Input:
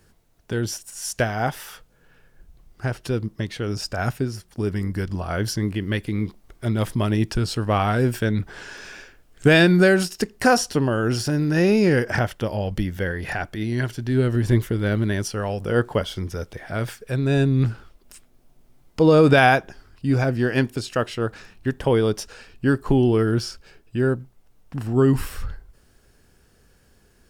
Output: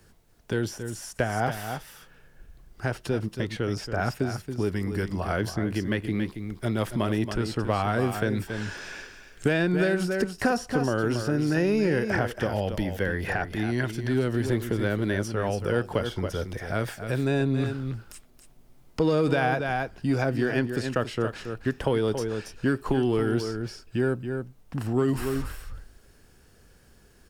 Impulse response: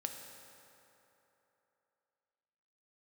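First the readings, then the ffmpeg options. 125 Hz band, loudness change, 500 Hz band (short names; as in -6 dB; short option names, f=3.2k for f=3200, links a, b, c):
-6.0 dB, -5.5 dB, -4.5 dB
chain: -filter_complex "[0:a]asplit=2[a][b];[b]asoftclip=type=tanh:threshold=-17.5dB,volume=-6dB[c];[a][c]amix=inputs=2:normalize=0,aecho=1:1:277:0.316,acrossover=split=240|2200[d][e][f];[d]acompressor=threshold=-27dB:ratio=4[g];[e]acompressor=threshold=-20dB:ratio=4[h];[f]acompressor=threshold=-38dB:ratio=4[i];[g][h][i]amix=inputs=3:normalize=0,volume=-3dB"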